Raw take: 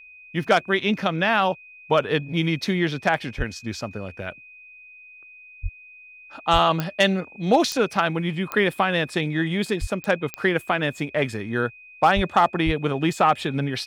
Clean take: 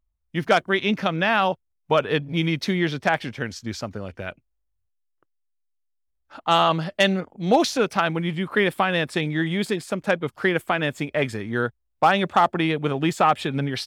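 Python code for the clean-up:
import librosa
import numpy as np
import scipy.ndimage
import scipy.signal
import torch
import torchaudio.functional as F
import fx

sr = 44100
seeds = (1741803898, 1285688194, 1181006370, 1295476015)

y = fx.fix_declick_ar(x, sr, threshold=10.0)
y = fx.notch(y, sr, hz=2500.0, q=30.0)
y = fx.fix_deplosive(y, sr, at_s=(3.37, 5.62, 6.52, 9.8, 12.15, 12.65))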